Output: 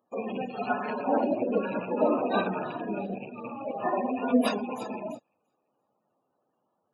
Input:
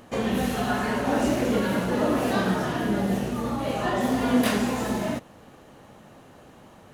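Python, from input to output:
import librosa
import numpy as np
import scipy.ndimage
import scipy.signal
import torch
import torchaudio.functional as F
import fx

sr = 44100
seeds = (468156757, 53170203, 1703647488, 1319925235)

p1 = fx.rattle_buzz(x, sr, strikes_db=-29.0, level_db=-21.0)
p2 = 10.0 ** (-24.5 / 20.0) * np.tanh(p1 / 10.0 ** (-24.5 / 20.0))
p3 = p1 + (p2 * 10.0 ** (-8.0 / 20.0))
p4 = fx.highpass(p3, sr, hz=540.0, slope=6)
p5 = fx.peak_eq(p4, sr, hz=1900.0, db=-7.0, octaves=1.0)
p6 = fx.spec_gate(p5, sr, threshold_db=-15, keep='strong')
p7 = fx.high_shelf(p6, sr, hz=7200.0, db=10.0)
p8 = fx.notch(p7, sr, hz=3100.0, q=8.1)
p9 = fx.echo_wet_highpass(p8, sr, ms=341, feedback_pct=30, hz=3900.0, wet_db=-6)
p10 = fx.upward_expand(p9, sr, threshold_db=-44.0, expansion=2.5)
y = p10 * 10.0 ** (6.5 / 20.0)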